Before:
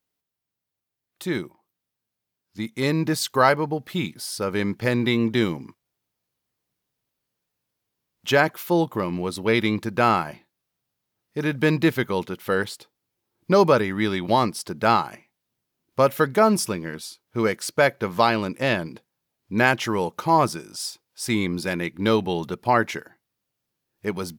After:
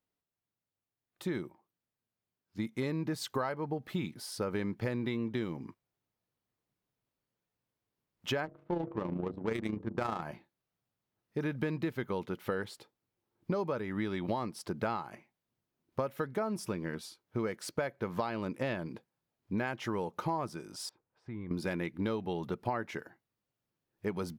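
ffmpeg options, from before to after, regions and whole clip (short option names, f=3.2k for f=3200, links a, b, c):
-filter_complex "[0:a]asettb=1/sr,asplit=3[a][b][c];[a]atrim=end=8.454[d];[b]atrim=start=8.45:end=10.22,asetpts=PTS-STARTPTS,afade=t=in:d=0.004:c=qsin,afade=t=out:st=1.766:d=0.004:c=qsin,bandreject=f=48.17:t=h:w=4,bandreject=f=96.34:t=h:w=4,bandreject=f=144.51:t=h:w=4,bandreject=f=192.68:t=h:w=4,bandreject=f=240.85:t=h:w=4,bandreject=f=289.02:t=h:w=4,bandreject=f=337.19:t=h:w=4,bandreject=f=385.36:t=h:w=4,bandreject=f=433.53:t=h:w=4,bandreject=f=481.7:t=h:w=4,bandreject=f=529.87:t=h:w=4,bandreject=f=578.04:t=h:w=4,bandreject=f=626.21:t=h:w=4,bandreject=f=674.38:t=h:w=4,bandreject=f=722.55:t=h:w=4,adynamicsmooth=sensitivity=1.5:basefreq=500,tremolo=f=28:d=0.571[e];[c]atrim=start=10.216[f];[d][e]acrossfade=d=0.004:c1=hsin:c2=qsin[g];[g][f]acrossfade=d=0.004:c1=qsin:c2=hsin,asettb=1/sr,asplit=3[h][i][j];[h]atrim=end=20.894[k];[i]atrim=start=20.89:end=21.51,asetpts=PTS-STARTPTS,afade=t=in:d=0.004:c=qsin,afade=t=out:st=0.616:d=0.004:c=qsin,asubboost=boost=9:cutoff=170,acompressor=threshold=-47dB:ratio=2:attack=3.2:release=140:knee=1:detection=peak,lowpass=1.6k[l];[j]atrim=start=21.506[m];[k][l]acrossfade=d=0.004:c1=hsin:c2=qsin[n];[n][m]acrossfade=d=0.004:c1=qsin:c2=hsin,highshelf=f=2.6k:g=-9.5,acompressor=threshold=-27dB:ratio=12,volume=-3dB"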